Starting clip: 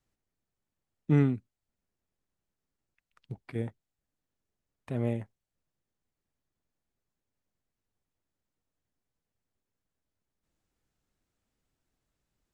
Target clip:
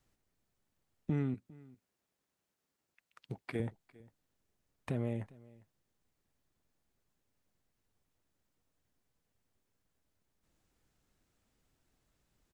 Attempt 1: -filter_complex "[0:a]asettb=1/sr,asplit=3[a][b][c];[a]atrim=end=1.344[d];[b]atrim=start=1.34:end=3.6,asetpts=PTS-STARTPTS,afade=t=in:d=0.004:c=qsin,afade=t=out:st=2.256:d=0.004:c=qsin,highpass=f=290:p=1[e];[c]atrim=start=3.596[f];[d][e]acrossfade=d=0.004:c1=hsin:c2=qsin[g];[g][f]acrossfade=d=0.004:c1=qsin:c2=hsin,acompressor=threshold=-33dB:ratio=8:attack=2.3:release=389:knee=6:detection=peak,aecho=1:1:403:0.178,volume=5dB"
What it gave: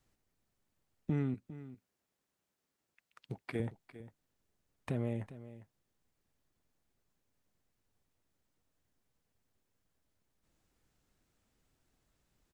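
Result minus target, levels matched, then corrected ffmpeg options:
echo-to-direct +7.5 dB
-filter_complex "[0:a]asettb=1/sr,asplit=3[a][b][c];[a]atrim=end=1.344[d];[b]atrim=start=1.34:end=3.6,asetpts=PTS-STARTPTS,afade=t=in:d=0.004:c=qsin,afade=t=out:st=2.256:d=0.004:c=qsin,highpass=f=290:p=1[e];[c]atrim=start=3.596[f];[d][e]acrossfade=d=0.004:c1=hsin:c2=qsin[g];[g][f]acrossfade=d=0.004:c1=qsin:c2=hsin,acompressor=threshold=-33dB:ratio=8:attack=2.3:release=389:knee=6:detection=peak,aecho=1:1:403:0.075,volume=5dB"

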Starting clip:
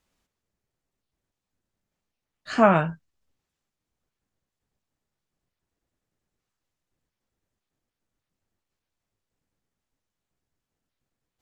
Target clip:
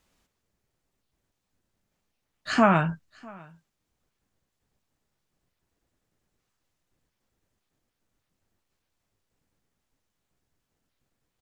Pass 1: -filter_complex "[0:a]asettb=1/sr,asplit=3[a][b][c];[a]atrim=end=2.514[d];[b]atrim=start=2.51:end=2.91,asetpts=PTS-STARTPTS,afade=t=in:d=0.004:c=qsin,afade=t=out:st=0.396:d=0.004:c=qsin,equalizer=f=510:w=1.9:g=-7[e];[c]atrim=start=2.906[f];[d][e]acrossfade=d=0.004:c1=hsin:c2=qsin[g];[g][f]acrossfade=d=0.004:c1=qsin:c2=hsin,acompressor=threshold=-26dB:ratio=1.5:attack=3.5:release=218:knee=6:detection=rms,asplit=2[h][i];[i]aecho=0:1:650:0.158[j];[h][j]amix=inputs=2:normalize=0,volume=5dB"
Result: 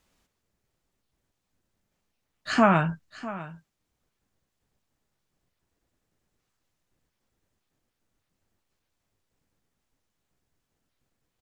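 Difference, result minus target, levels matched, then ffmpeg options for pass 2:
echo-to-direct +9 dB
-filter_complex "[0:a]asettb=1/sr,asplit=3[a][b][c];[a]atrim=end=2.514[d];[b]atrim=start=2.51:end=2.91,asetpts=PTS-STARTPTS,afade=t=in:d=0.004:c=qsin,afade=t=out:st=0.396:d=0.004:c=qsin,equalizer=f=510:w=1.9:g=-7[e];[c]atrim=start=2.906[f];[d][e]acrossfade=d=0.004:c1=hsin:c2=qsin[g];[g][f]acrossfade=d=0.004:c1=qsin:c2=hsin,acompressor=threshold=-26dB:ratio=1.5:attack=3.5:release=218:knee=6:detection=rms,asplit=2[h][i];[i]aecho=0:1:650:0.0562[j];[h][j]amix=inputs=2:normalize=0,volume=5dB"

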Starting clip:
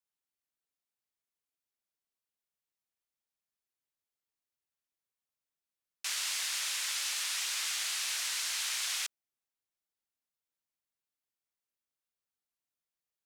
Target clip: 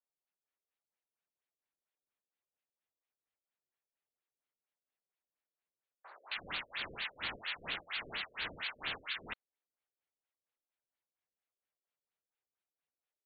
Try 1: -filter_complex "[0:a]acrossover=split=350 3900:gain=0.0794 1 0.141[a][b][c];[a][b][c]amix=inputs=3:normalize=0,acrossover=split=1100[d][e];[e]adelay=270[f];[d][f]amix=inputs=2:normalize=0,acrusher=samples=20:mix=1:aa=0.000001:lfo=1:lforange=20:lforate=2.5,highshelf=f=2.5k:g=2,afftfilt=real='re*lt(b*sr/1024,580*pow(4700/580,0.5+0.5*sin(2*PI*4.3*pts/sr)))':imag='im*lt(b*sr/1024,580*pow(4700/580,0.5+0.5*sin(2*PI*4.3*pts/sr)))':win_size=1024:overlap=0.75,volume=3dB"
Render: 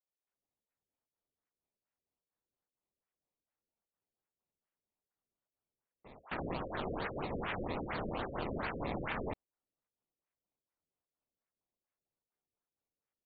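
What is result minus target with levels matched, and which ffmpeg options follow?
decimation with a swept rate: distortion +30 dB
-filter_complex "[0:a]acrossover=split=350 3900:gain=0.0794 1 0.141[a][b][c];[a][b][c]amix=inputs=3:normalize=0,acrossover=split=1100[d][e];[e]adelay=270[f];[d][f]amix=inputs=2:normalize=0,acrusher=samples=5:mix=1:aa=0.000001:lfo=1:lforange=5:lforate=2.5,highshelf=f=2.5k:g=2,afftfilt=real='re*lt(b*sr/1024,580*pow(4700/580,0.5+0.5*sin(2*PI*4.3*pts/sr)))':imag='im*lt(b*sr/1024,580*pow(4700/580,0.5+0.5*sin(2*PI*4.3*pts/sr)))':win_size=1024:overlap=0.75,volume=3dB"

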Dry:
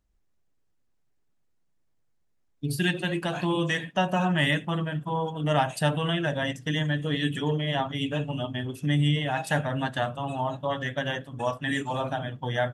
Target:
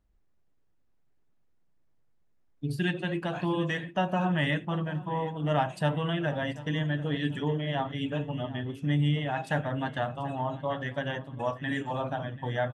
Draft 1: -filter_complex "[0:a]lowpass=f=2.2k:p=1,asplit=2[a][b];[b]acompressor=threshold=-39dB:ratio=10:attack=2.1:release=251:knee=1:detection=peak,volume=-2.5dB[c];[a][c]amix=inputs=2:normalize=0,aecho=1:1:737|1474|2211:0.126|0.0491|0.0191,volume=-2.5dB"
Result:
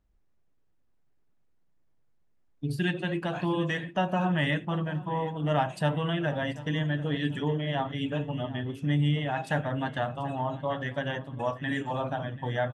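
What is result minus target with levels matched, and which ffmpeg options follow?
compressor: peak gain reduction -10.5 dB
-filter_complex "[0:a]lowpass=f=2.2k:p=1,asplit=2[a][b];[b]acompressor=threshold=-50.5dB:ratio=10:attack=2.1:release=251:knee=1:detection=peak,volume=-2.5dB[c];[a][c]amix=inputs=2:normalize=0,aecho=1:1:737|1474|2211:0.126|0.0491|0.0191,volume=-2.5dB"

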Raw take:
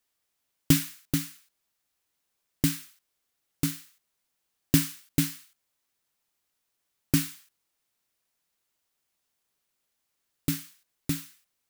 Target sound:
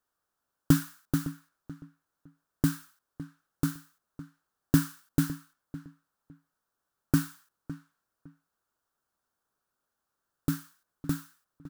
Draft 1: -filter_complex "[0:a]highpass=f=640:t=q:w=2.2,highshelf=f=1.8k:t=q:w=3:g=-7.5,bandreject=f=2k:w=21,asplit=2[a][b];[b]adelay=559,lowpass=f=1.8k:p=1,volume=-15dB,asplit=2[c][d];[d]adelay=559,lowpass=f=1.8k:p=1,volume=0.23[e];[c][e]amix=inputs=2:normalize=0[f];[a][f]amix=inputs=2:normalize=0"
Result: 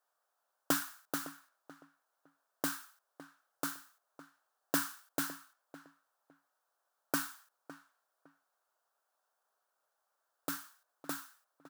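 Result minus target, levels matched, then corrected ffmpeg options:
500 Hz band +6.0 dB
-filter_complex "[0:a]highshelf=f=1.8k:t=q:w=3:g=-7.5,bandreject=f=2k:w=21,asplit=2[a][b];[b]adelay=559,lowpass=f=1.8k:p=1,volume=-15dB,asplit=2[c][d];[d]adelay=559,lowpass=f=1.8k:p=1,volume=0.23[e];[c][e]amix=inputs=2:normalize=0[f];[a][f]amix=inputs=2:normalize=0"

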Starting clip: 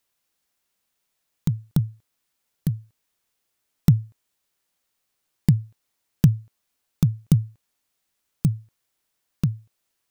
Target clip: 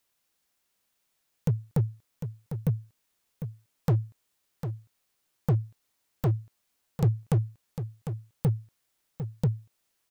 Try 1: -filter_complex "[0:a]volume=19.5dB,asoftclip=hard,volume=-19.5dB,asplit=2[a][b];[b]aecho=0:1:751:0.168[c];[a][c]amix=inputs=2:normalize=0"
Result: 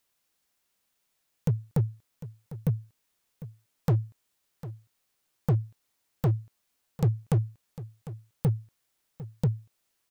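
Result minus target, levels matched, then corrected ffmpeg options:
echo-to-direct -6 dB
-filter_complex "[0:a]volume=19.5dB,asoftclip=hard,volume=-19.5dB,asplit=2[a][b];[b]aecho=0:1:751:0.335[c];[a][c]amix=inputs=2:normalize=0"

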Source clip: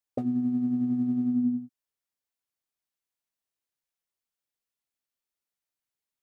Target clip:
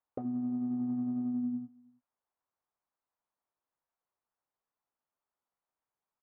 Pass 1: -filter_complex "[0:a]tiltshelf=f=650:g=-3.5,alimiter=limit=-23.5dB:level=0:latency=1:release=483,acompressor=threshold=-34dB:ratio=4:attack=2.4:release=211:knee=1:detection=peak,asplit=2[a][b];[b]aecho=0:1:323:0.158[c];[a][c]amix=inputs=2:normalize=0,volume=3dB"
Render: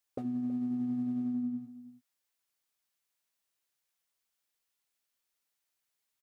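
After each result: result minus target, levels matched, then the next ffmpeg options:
echo-to-direct +11 dB; 1000 Hz band -2.5 dB
-filter_complex "[0:a]tiltshelf=f=650:g=-3.5,alimiter=limit=-23.5dB:level=0:latency=1:release=483,acompressor=threshold=-34dB:ratio=4:attack=2.4:release=211:knee=1:detection=peak,asplit=2[a][b];[b]aecho=0:1:323:0.0447[c];[a][c]amix=inputs=2:normalize=0,volume=3dB"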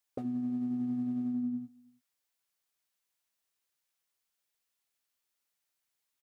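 1000 Hz band -3.0 dB
-filter_complex "[0:a]lowpass=f=1k:t=q:w=1.7,tiltshelf=f=650:g=-3.5,alimiter=limit=-23.5dB:level=0:latency=1:release=483,acompressor=threshold=-34dB:ratio=4:attack=2.4:release=211:knee=1:detection=peak,asplit=2[a][b];[b]aecho=0:1:323:0.0447[c];[a][c]amix=inputs=2:normalize=0,volume=3dB"

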